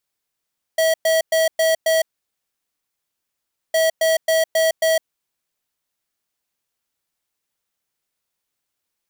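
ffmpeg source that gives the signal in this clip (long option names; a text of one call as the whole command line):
ffmpeg -f lavfi -i "aevalsrc='0.15*(2*lt(mod(646*t,1),0.5)-1)*clip(min(mod(mod(t,2.96),0.27),0.16-mod(mod(t,2.96),0.27))/0.005,0,1)*lt(mod(t,2.96),1.35)':duration=5.92:sample_rate=44100" out.wav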